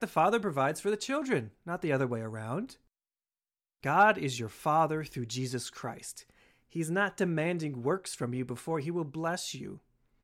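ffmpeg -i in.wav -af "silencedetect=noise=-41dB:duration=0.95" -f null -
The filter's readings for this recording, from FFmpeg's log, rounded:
silence_start: 2.73
silence_end: 3.84 | silence_duration: 1.11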